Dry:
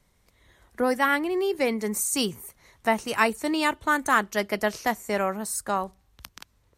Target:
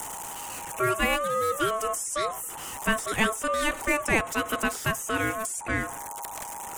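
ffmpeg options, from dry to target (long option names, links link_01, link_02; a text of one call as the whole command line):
ffmpeg -i in.wav -filter_complex "[0:a]aeval=exprs='val(0)+0.5*0.0316*sgn(val(0))':channel_layout=same,highshelf=frequency=6200:width_type=q:width=3:gain=8.5,acrossover=split=820|4400[link_01][link_02][link_03];[link_03]acompressor=threshold=-32dB:ratio=12[link_04];[link_01][link_02][link_04]amix=inputs=3:normalize=0,aeval=exprs='val(0)*sin(2*PI*880*n/s)':channel_layout=same,afftfilt=real='re*gte(hypot(re,im),0.00398)':imag='im*gte(hypot(re,im),0.00398)':win_size=1024:overlap=0.75" out.wav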